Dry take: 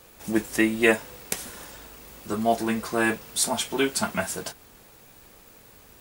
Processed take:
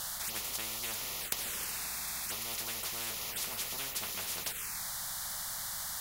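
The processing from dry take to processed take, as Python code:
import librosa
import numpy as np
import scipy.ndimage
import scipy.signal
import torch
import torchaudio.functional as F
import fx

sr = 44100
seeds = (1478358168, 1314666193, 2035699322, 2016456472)

y = fx.env_phaser(x, sr, low_hz=380.0, high_hz=1600.0, full_db=-28.0)
y = fx.tone_stack(y, sr, knobs='10-0-10')
y = fx.spectral_comp(y, sr, ratio=10.0)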